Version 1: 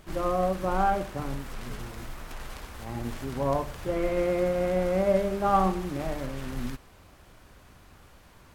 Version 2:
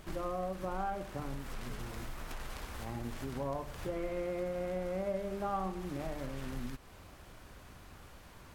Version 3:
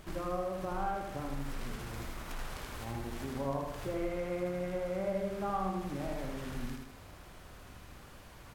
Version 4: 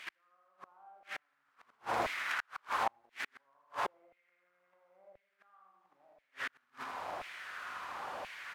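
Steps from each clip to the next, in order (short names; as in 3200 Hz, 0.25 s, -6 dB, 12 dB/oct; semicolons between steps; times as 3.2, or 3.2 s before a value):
compressor 2.5:1, threshold -39 dBFS, peak gain reduction 14 dB
feedback echo 79 ms, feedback 48%, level -4 dB
flipped gate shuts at -29 dBFS, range -40 dB; LFO high-pass saw down 0.97 Hz 680–2300 Hz; RIAA curve playback; gain +11.5 dB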